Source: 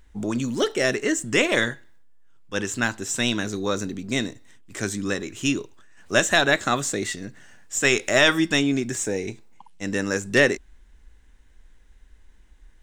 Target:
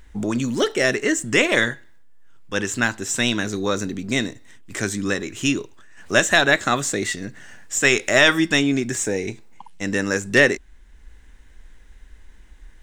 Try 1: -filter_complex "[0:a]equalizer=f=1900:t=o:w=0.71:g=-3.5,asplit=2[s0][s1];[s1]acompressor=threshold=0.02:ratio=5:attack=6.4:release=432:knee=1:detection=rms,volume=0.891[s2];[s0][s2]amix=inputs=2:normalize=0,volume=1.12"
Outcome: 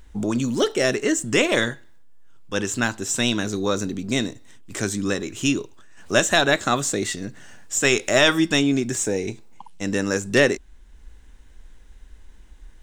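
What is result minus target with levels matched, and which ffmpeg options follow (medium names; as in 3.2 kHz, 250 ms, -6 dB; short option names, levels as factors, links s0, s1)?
2 kHz band -3.0 dB
-filter_complex "[0:a]equalizer=f=1900:t=o:w=0.71:g=2.5,asplit=2[s0][s1];[s1]acompressor=threshold=0.02:ratio=5:attack=6.4:release=432:knee=1:detection=rms,volume=0.891[s2];[s0][s2]amix=inputs=2:normalize=0,volume=1.12"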